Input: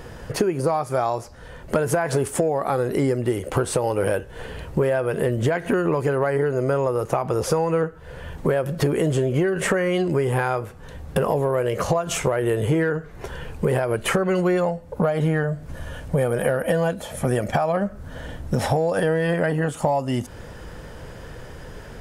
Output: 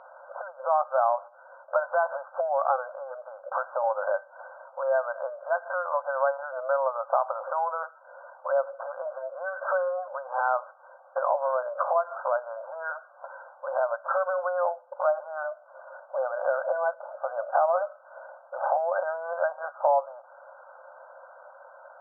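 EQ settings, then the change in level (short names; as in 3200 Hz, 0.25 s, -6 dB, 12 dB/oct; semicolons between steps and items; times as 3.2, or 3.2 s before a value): dynamic EQ 1100 Hz, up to +3 dB, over -35 dBFS, Q 1.5; brick-wall FIR band-pass 520–1600 Hz; air absorption 360 m; 0.0 dB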